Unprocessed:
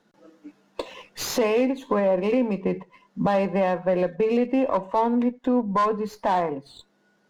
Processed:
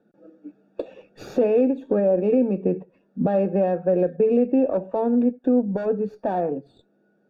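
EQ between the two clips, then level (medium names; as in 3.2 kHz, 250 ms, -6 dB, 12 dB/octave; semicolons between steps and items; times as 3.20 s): boxcar filter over 43 samples; bass shelf 84 Hz -11.5 dB; bass shelf 330 Hz -5.5 dB; +8.5 dB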